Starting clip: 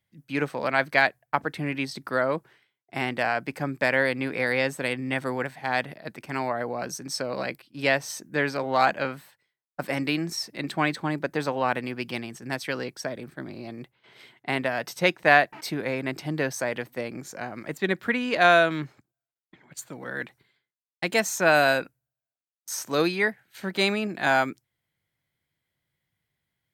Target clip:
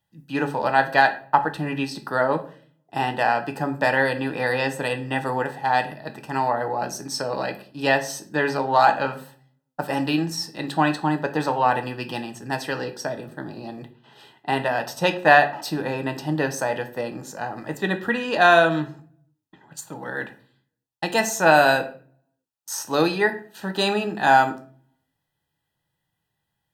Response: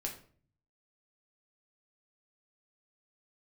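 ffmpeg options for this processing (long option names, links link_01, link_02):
-filter_complex "[0:a]asuperstop=centerf=2200:order=12:qfactor=5.7,equalizer=frequency=860:width=4.9:gain=10.5,asplit=2[link_01][link_02];[1:a]atrim=start_sample=2205[link_03];[link_02][link_03]afir=irnorm=-1:irlink=0,volume=2dB[link_04];[link_01][link_04]amix=inputs=2:normalize=0,volume=-4dB"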